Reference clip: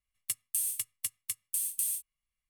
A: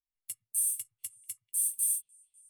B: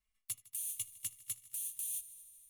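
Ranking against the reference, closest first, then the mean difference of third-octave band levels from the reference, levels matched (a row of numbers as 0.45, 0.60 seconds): B, A; 3.5, 6.0 decibels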